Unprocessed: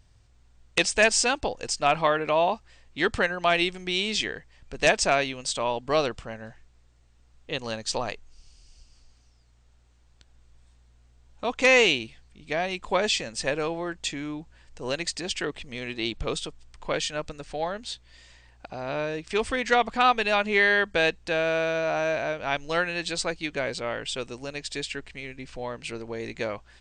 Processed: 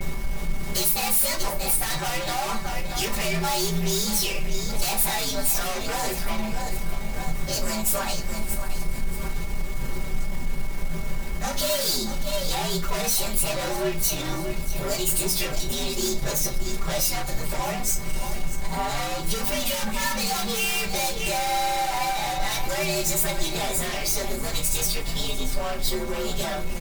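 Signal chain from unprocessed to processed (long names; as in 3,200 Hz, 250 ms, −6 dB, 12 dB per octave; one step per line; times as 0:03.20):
partials spread apart or drawn together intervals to 121%
background noise brown −42 dBFS
noise gate with hold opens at −38 dBFS
tube saturation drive 23 dB, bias 0.4
repeating echo 626 ms, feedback 35%, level −17.5 dB
leveller curve on the samples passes 5
steady tone 2,200 Hz −44 dBFS
comb filter 5.1 ms, depth 91%
downward compressor, threshold −28 dBFS, peak gain reduction 11 dB
high-shelf EQ 6,200 Hz +11 dB
convolution reverb RT60 0.35 s, pre-delay 6 ms, DRR 4.5 dB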